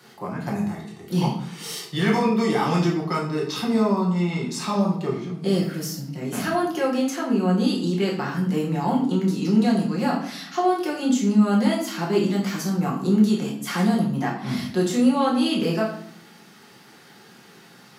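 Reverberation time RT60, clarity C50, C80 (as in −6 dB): 0.60 s, 6.0 dB, 9.5 dB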